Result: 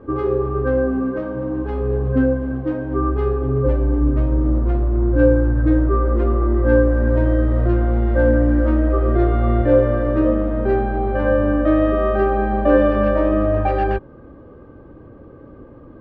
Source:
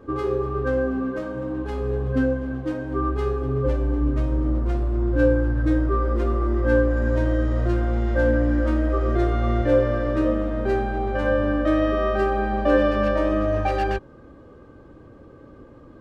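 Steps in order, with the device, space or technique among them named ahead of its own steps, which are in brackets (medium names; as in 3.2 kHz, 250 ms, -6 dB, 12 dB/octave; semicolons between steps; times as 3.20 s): phone in a pocket (low-pass 3.5 kHz 12 dB/octave; treble shelf 2.1 kHz -10.5 dB); trim +5 dB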